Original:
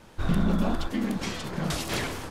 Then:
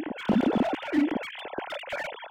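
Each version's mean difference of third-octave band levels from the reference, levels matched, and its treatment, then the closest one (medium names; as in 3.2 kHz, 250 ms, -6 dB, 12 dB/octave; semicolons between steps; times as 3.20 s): 12.5 dB: formants replaced by sine waves; peaking EQ 1.2 kHz -12.5 dB 0.24 oct; reverse echo 1051 ms -5 dB; slew-rate limiter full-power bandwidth 52 Hz; trim -1 dB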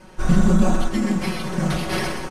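3.5 dB: careless resampling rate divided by 6×, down filtered, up hold; low-pass 11 kHz 24 dB/octave; comb 5.4 ms, depth 100%; on a send: delay 127 ms -8 dB; on the sum: trim +3 dB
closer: second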